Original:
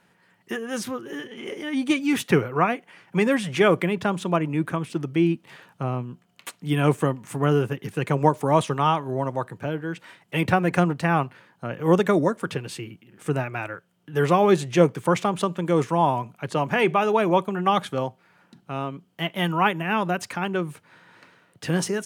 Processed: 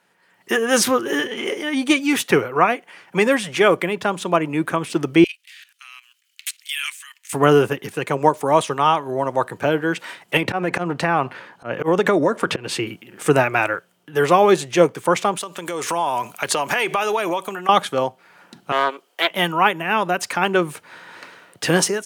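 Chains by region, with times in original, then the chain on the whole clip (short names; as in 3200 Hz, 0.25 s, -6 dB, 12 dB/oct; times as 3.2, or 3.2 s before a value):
5.24–7.33 inverse Chebyshev band-stop 110–570 Hz, stop band 70 dB + level quantiser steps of 14 dB
10.37–12.87 LPF 3500 Hz 6 dB/oct + auto swell 0.164 s + compressor 5:1, threshold -25 dBFS
15.37–17.69 tilt +2.5 dB/oct + compressor 8:1, threshold -31 dBFS
18.72–19.31 HPF 400 Hz 24 dB/oct + Doppler distortion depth 0.19 ms
whole clip: tone controls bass -11 dB, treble +2 dB; AGC gain up to 16.5 dB; gain -1 dB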